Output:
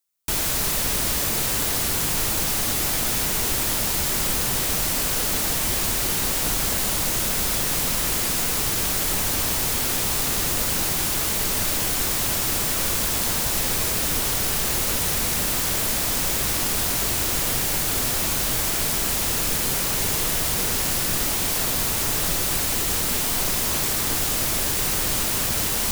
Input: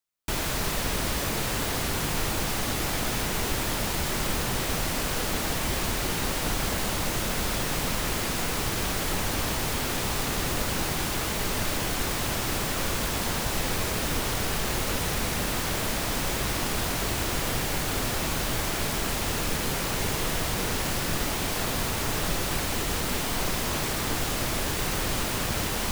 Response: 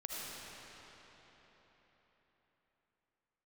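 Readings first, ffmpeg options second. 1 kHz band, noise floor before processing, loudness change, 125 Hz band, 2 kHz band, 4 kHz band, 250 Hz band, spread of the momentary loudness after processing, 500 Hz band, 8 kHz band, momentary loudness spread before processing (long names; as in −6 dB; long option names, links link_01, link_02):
+0.5 dB, −29 dBFS, +6.5 dB, 0.0 dB, +1.5 dB, +4.5 dB, 0.0 dB, 0 LU, 0.0 dB, +8.5 dB, 0 LU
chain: -af "highshelf=frequency=4900:gain=11.5"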